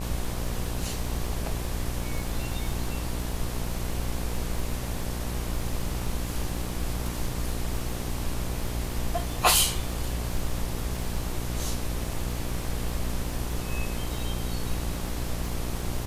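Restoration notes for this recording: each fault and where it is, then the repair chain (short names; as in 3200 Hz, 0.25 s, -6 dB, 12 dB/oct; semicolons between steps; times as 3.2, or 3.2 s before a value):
buzz 60 Hz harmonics 20 -33 dBFS
crackle 38/s -34 dBFS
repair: de-click; de-hum 60 Hz, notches 20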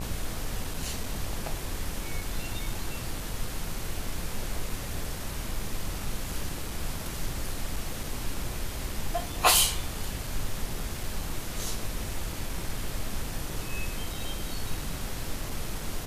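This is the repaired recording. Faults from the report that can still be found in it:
none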